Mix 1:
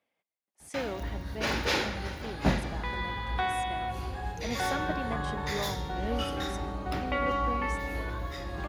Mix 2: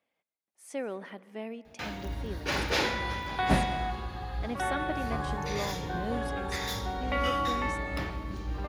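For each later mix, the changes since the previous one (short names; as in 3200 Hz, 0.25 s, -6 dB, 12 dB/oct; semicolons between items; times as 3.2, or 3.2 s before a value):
first sound: entry +1.05 s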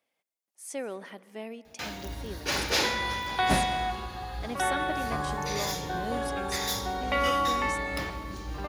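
second sound +3.5 dB; master: add tone controls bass -3 dB, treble +9 dB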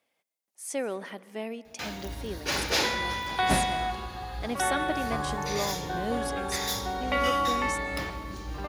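speech +4.0 dB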